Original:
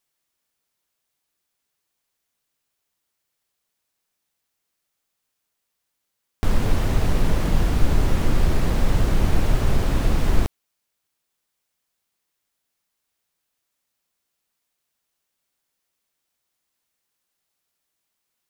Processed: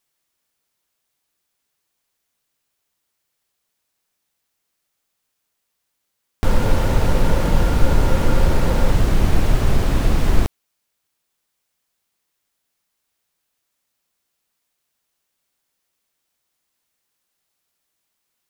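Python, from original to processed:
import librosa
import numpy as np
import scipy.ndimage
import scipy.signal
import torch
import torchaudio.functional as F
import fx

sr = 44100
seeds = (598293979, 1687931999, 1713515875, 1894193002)

y = fx.small_body(x, sr, hz=(530.0, 900.0, 1400.0), ring_ms=45, db=9, at=(6.44, 8.91))
y = y * librosa.db_to_amplitude(3.0)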